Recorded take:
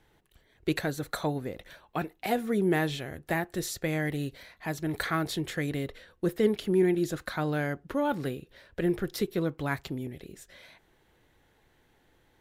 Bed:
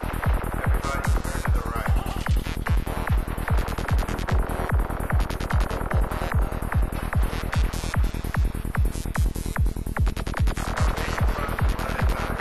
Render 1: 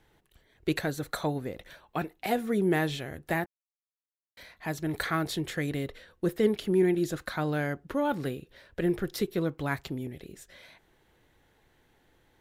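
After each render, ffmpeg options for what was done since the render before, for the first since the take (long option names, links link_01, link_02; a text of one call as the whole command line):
ffmpeg -i in.wav -filter_complex "[0:a]asplit=3[link_01][link_02][link_03];[link_01]atrim=end=3.46,asetpts=PTS-STARTPTS,afade=type=out:start_time=3.456:duration=0.004:curve=hsin[link_04];[link_02]atrim=start=3.46:end=4.37,asetpts=PTS-STARTPTS,volume=0[link_05];[link_03]atrim=start=4.37,asetpts=PTS-STARTPTS,afade=type=in:duration=0.004:curve=hsin[link_06];[link_04][link_05][link_06]concat=n=3:v=0:a=1" out.wav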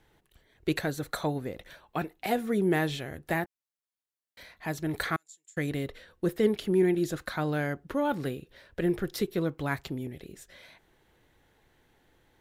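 ffmpeg -i in.wav -filter_complex "[0:a]asettb=1/sr,asplit=3[link_01][link_02][link_03];[link_01]atrim=end=5.164[link_04];[link_02]atrim=start=5.16:end=5.57,asetpts=PTS-STARTPTS,afade=type=in:duration=0.004:curve=qsin,afade=type=out:start_time=0.406:duration=0.004:curve=qsin,bandpass=frequency=7200:width_type=q:width=16[link_05];[link_03]atrim=start=5.566[link_06];[link_04][link_05]acrossfade=duration=0.004:curve1=hsin:curve2=qsin[link_07];[link_07][link_06]acrossfade=duration=0.004:curve1=qsin:curve2=hsin" out.wav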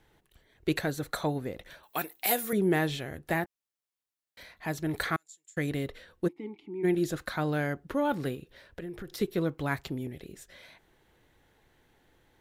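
ffmpeg -i in.wav -filter_complex "[0:a]asettb=1/sr,asplit=3[link_01][link_02][link_03];[link_01]atrim=end=1.834[link_04];[link_02]atrim=start=1.83:end=2.53,asetpts=PTS-STARTPTS,afade=type=in:duration=0.004:curve=qsin,afade=type=out:start_time=0.696:duration=0.004:curve=qsin,aemphasis=mode=production:type=riaa[link_05];[link_03]atrim=start=2.526[link_06];[link_04][link_05]acrossfade=duration=0.004:curve1=hsin:curve2=qsin[link_07];[link_07][link_06]acrossfade=duration=0.004:curve1=qsin:curve2=hsin,asplit=3[link_08][link_09][link_10];[link_08]afade=type=out:start_time=6.27:duration=0.02[link_11];[link_09]asplit=3[link_12][link_13][link_14];[link_12]bandpass=frequency=300:width_type=q:width=8,volume=0dB[link_15];[link_13]bandpass=frequency=870:width_type=q:width=8,volume=-6dB[link_16];[link_14]bandpass=frequency=2240:width_type=q:width=8,volume=-9dB[link_17];[link_15][link_16][link_17]amix=inputs=3:normalize=0,afade=type=in:start_time=6.27:duration=0.02,afade=type=out:start_time=6.83:duration=0.02[link_18];[link_10]afade=type=in:start_time=6.83:duration=0.02[link_19];[link_11][link_18][link_19]amix=inputs=3:normalize=0,asettb=1/sr,asplit=3[link_20][link_21][link_22];[link_20]atrim=end=8.354[link_23];[link_21]atrim=start=8.35:end=9.21,asetpts=PTS-STARTPTS,afade=type=in:duration=0.004:curve=qsin,afade=type=out:start_time=0.856:duration=0.004:curve=qsin,acompressor=threshold=-37dB:ratio=5:attack=3.2:release=140:knee=1:detection=peak[link_24];[link_22]atrim=start=9.206[link_25];[link_23][link_24]acrossfade=duration=0.004:curve1=hsin:curve2=qsin[link_26];[link_26][link_25]acrossfade=duration=0.004:curve1=qsin:curve2=hsin" out.wav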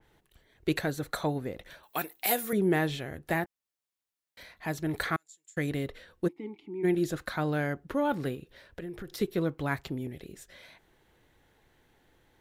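ffmpeg -i in.wav -af "adynamicequalizer=threshold=0.00398:dfrequency=3000:dqfactor=0.7:tfrequency=3000:tqfactor=0.7:attack=5:release=100:ratio=0.375:range=1.5:mode=cutabove:tftype=highshelf" out.wav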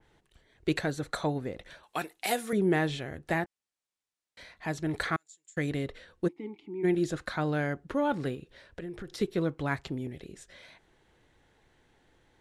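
ffmpeg -i in.wav -af "lowpass=frequency=9700:width=0.5412,lowpass=frequency=9700:width=1.3066" out.wav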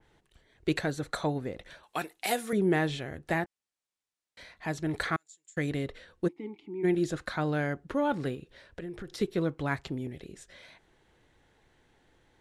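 ffmpeg -i in.wav -af anull out.wav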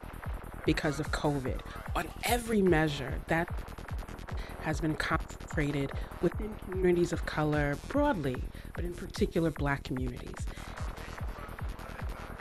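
ffmpeg -i in.wav -i bed.wav -filter_complex "[1:a]volume=-15.5dB[link_01];[0:a][link_01]amix=inputs=2:normalize=0" out.wav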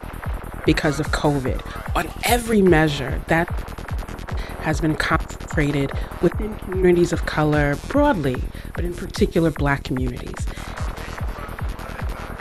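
ffmpeg -i in.wav -af "volume=11dB" out.wav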